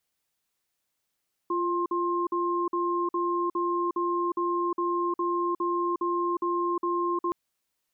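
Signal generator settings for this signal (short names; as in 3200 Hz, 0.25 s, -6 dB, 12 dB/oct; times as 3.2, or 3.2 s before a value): cadence 347 Hz, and 1060 Hz, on 0.36 s, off 0.05 s, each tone -27 dBFS 5.82 s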